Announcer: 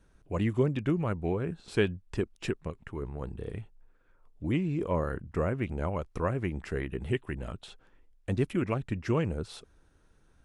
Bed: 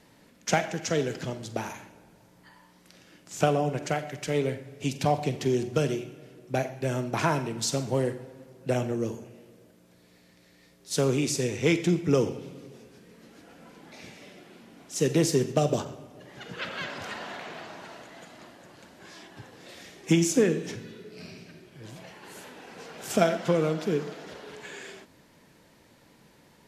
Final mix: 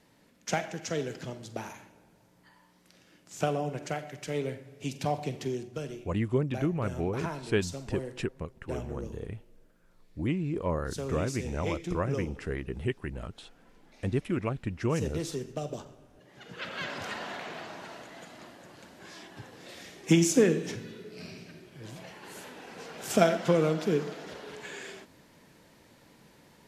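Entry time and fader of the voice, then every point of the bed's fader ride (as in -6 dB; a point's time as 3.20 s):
5.75 s, -1.0 dB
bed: 5.41 s -5.5 dB
5.69 s -11.5 dB
16.09 s -11.5 dB
16.91 s 0 dB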